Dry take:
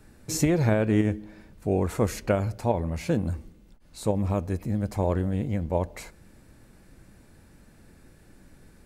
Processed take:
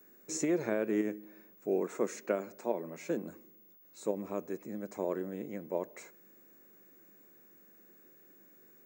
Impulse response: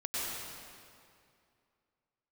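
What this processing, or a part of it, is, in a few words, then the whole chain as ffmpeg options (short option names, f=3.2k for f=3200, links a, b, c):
old television with a line whistle: -filter_complex "[0:a]asettb=1/sr,asplit=3[a][b][c];[a]atrim=end=1.814[d];[b]atrim=start=1.81:end=3.22,asetpts=PTS-STARTPTS,afade=t=in:d=0.004:c=qsin,afade=t=out:st=1.406:d=0.004:c=qsin,highpass=f=140:w=0.5412,highpass=f=140:w=1.3066[e];[c]atrim=start=3.216[f];[d][e]acrossfade=d=0.004:c1=hsin:c2=qsin[g];[g][f]acrossfade=d=0.004:c1=qsin:c2=hsin,highpass=f=220:w=0.5412,highpass=f=220:w=1.3066,equalizer=f=250:t=q:w=4:g=-4,equalizer=f=380:t=q:w=4:g=5,equalizer=f=820:t=q:w=4:g=-6,equalizer=f=3.1k:t=q:w=4:g=-8,equalizer=f=4.6k:t=q:w=4:g=-9,equalizer=f=6.9k:t=q:w=4:g=5,lowpass=f=7.7k:w=0.5412,lowpass=f=7.7k:w=1.3066,aeval=exprs='val(0)+0.00282*sin(2*PI*15625*n/s)':c=same,volume=-7dB"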